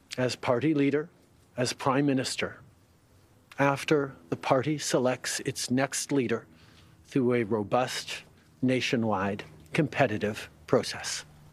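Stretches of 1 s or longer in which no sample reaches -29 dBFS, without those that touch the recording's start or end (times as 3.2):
2.47–3.6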